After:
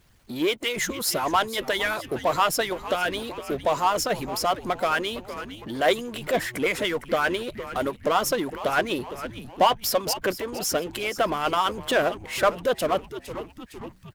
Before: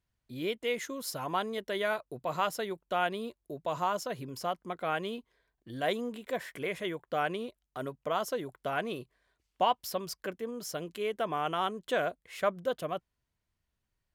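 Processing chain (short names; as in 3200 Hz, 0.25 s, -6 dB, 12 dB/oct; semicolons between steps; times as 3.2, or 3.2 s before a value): frequency-shifting echo 0.459 s, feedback 48%, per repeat -120 Hz, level -16.5 dB; harmonic-percussive split harmonic -16 dB; power-law curve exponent 0.7; gain +8 dB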